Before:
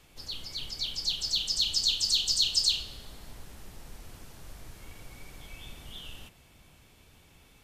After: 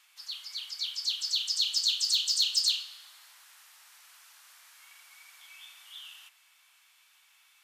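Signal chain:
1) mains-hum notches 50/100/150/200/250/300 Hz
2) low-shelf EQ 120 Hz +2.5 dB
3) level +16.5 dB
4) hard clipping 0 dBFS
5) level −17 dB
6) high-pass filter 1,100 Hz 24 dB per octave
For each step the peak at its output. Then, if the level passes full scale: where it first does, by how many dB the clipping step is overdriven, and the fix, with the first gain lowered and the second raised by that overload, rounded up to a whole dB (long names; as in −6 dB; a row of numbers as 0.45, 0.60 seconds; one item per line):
−11.5, −11.5, +5.0, 0.0, −17.0, −14.5 dBFS
step 3, 5.0 dB
step 3 +11.5 dB, step 5 −12 dB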